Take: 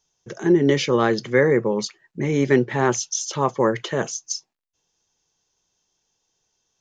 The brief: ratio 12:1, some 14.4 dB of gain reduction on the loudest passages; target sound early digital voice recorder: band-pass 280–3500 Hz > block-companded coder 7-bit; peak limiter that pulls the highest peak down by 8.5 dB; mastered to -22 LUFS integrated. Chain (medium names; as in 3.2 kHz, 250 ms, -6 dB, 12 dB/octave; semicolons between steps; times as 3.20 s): compression 12:1, threshold -26 dBFS; peak limiter -23.5 dBFS; band-pass 280–3500 Hz; block-companded coder 7-bit; trim +15 dB